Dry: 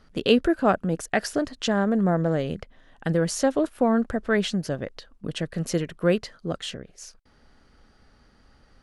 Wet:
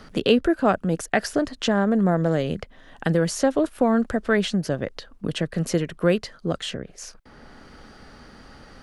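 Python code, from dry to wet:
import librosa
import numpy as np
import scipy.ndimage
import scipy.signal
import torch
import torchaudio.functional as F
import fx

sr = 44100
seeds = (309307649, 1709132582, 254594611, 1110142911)

y = fx.band_squash(x, sr, depth_pct=40)
y = F.gain(torch.from_numpy(y), 2.0).numpy()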